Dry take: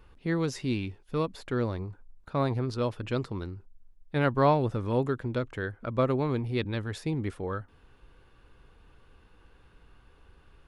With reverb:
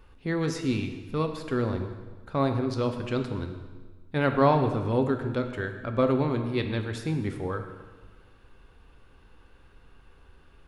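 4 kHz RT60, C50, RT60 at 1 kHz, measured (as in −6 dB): 1.2 s, 8.0 dB, 1.4 s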